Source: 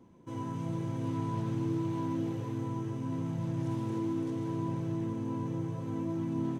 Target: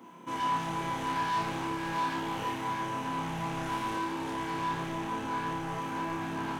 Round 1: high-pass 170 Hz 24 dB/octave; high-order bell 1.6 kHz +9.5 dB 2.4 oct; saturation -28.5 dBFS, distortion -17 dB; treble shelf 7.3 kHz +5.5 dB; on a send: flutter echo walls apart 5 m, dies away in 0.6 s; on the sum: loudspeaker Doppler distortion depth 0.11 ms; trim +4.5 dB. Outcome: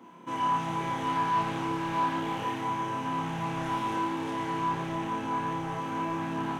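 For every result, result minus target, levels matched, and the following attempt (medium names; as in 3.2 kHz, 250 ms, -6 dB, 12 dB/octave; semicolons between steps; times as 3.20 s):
saturation: distortion -7 dB; 8 kHz band -4.5 dB
high-pass 170 Hz 24 dB/octave; high-order bell 1.6 kHz +9.5 dB 2.4 oct; saturation -35 dBFS, distortion -10 dB; treble shelf 7.3 kHz +5.5 dB; on a send: flutter echo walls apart 5 m, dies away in 0.6 s; on the sum: loudspeaker Doppler distortion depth 0.11 ms; trim +4.5 dB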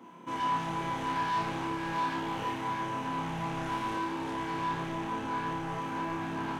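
8 kHz band -3.5 dB
high-pass 170 Hz 24 dB/octave; high-order bell 1.6 kHz +9.5 dB 2.4 oct; saturation -35 dBFS, distortion -10 dB; treble shelf 7.3 kHz +13.5 dB; on a send: flutter echo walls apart 5 m, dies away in 0.6 s; on the sum: loudspeaker Doppler distortion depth 0.11 ms; trim +4.5 dB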